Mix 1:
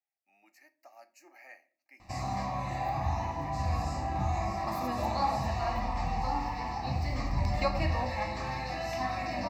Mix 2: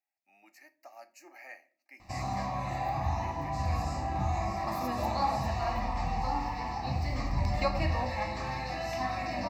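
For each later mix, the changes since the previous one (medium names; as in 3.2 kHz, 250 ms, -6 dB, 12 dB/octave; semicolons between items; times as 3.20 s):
speech +4.0 dB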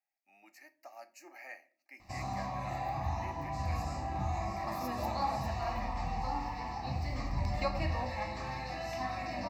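background -4.0 dB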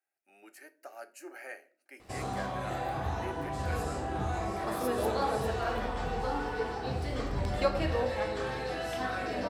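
master: remove static phaser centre 2.2 kHz, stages 8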